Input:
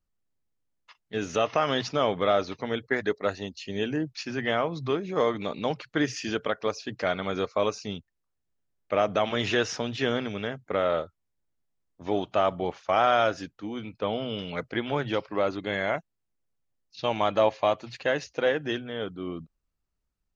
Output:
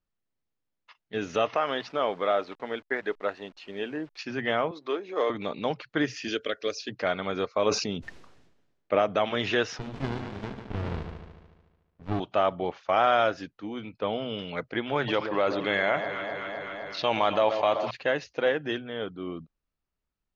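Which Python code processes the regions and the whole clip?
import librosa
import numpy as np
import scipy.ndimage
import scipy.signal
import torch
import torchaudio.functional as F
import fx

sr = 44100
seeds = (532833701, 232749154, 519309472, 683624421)

y = fx.chain(x, sr, fx.delta_hold(step_db=-46.0),
    fx.lowpass(hz=2700.0, slope=6),
    fx.peak_eq(hz=83.0, db=-14.5, octaves=2.6), at=(1.55, 4.19))
y = fx.chain(y, sr, fx.halfwave_gain(db=-3.0),
    fx.highpass(hz=300.0, slope=24), at=(4.71, 5.3))
y = fx.chain(y, sr, fx.high_shelf(hz=3200.0, db=11.0),
    fx.fixed_phaser(hz=370.0, stages=4), at=(6.28, 6.89))
y = fx.chain(y, sr, fx.peak_eq(hz=310.0, db=4.0, octaves=2.2),
    fx.sustainer(db_per_s=45.0), at=(7.66, 8.99))
y = fx.chain(y, sr, fx.echo_heads(ms=73, heads='first and second', feedback_pct=57, wet_db=-10.0),
    fx.running_max(window=65), at=(9.79, 12.2))
y = fx.chain(y, sr, fx.low_shelf(hz=430.0, db=-6.0),
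    fx.echo_alternate(ms=128, hz=1000.0, feedback_pct=80, wet_db=-13.5),
    fx.env_flatten(amount_pct=50), at=(14.95, 17.91))
y = scipy.signal.sosfilt(scipy.signal.butter(2, 4500.0, 'lowpass', fs=sr, output='sos'), y)
y = fx.low_shelf(y, sr, hz=130.0, db=-6.0)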